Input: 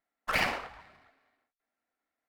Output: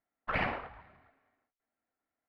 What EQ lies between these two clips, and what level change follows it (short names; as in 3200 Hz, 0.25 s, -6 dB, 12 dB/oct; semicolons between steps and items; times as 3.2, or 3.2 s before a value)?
air absorption 470 m; bell 93 Hz +5 dB 1.6 oct; 0.0 dB